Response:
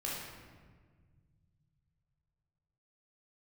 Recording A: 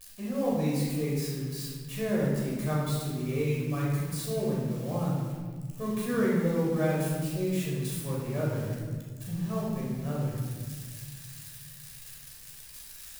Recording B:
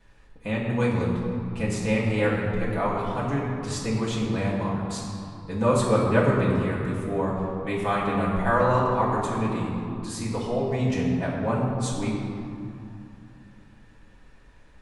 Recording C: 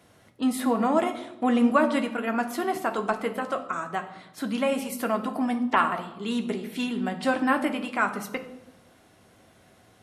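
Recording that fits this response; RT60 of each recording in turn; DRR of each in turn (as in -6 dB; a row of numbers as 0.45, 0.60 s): A; 1.6, 2.7, 0.95 s; -5.5, -8.0, 4.5 dB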